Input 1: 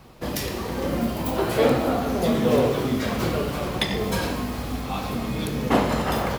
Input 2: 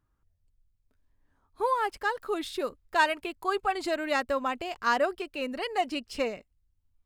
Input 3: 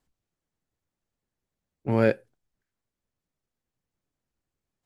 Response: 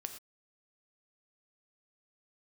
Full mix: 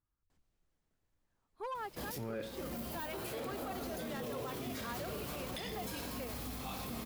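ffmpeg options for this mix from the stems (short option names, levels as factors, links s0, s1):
-filter_complex "[0:a]aemphasis=mode=production:type=75kf,adelay=1750,volume=0.251[s0];[1:a]asoftclip=type=hard:threshold=0.0708,volume=0.224[s1];[2:a]adelay=300,volume=1.19,asplit=2[s2][s3];[s3]volume=0.112[s4];[s0][s2]amix=inputs=2:normalize=0,asoftclip=type=tanh:threshold=0.299,acompressor=threshold=0.0158:ratio=4,volume=1[s5];[3:a]atrim=start_sample=2205[s6];[s4][s6]afir=irnorm=-1:irlink=0[s7];[s1][s5][s7]amix=inputs=3:normalize=0,highshelf=f=5100:g=-4,alimiter=level_in=2.66:limit=0.0631:level=0:latency=1:release=15,volume=0.376"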